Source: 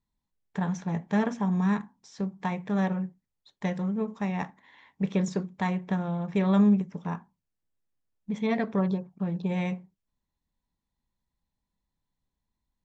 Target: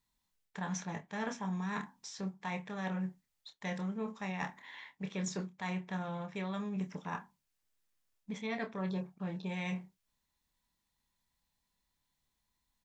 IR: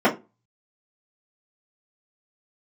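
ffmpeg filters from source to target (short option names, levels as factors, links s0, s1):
-filter_complex "[0:a]tiltshelf=f=830:g=-6,areverse,acompressor=threshold=0.0126:ratio=6,areverse,asplit=2[s0][s1];[s1]adelay=27,volume=0.376[s2];[s0][s2]amix=inputs=2:normalize=0,volume=1.26"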